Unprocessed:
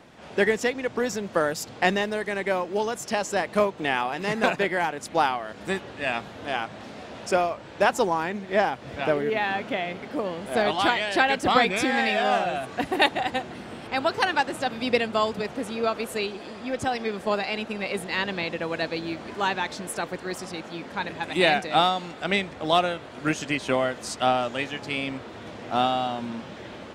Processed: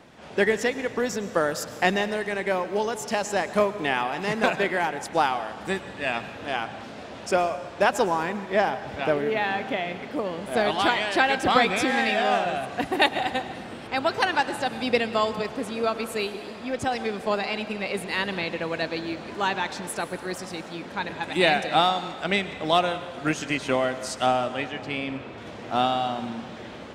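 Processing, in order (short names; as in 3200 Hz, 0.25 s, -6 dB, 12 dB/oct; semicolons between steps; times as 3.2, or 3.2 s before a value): 24.26–25.38 high shelf 5100 Hz -11 dB; reverb RT60 1.4 s, pre-delay 99 ms, DRR 12.5 dB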